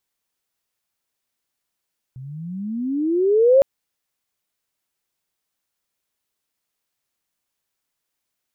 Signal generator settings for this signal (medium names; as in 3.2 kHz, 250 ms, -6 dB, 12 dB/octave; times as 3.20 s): gliding synth tone sine, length 1.46 s, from 125 Hz, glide +26 st, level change +24.5 dB, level -8.5 dB